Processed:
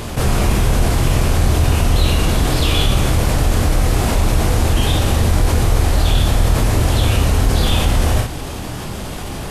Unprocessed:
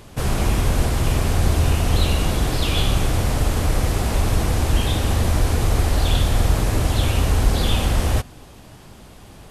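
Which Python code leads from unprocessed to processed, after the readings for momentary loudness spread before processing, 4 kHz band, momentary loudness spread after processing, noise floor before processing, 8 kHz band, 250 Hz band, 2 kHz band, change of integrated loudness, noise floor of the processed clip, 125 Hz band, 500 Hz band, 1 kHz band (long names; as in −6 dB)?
2 LU, +4.5 dB, 9 LU, −43 dBFS, +4.5 dB, +4.5 dB, +4.5 dB, +4.0 dB, −26 dBFS, +4.5 dB, +4.5 dB, +4.5 dB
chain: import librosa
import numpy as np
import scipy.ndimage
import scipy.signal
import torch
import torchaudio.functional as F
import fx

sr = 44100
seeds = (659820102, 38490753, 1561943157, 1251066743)

y = fx.room_early_taps(x, sr, ms=(26, 56), db=(-6.5, -10.0))
y = fx.env_flatten(y, sr, amount_pct=50)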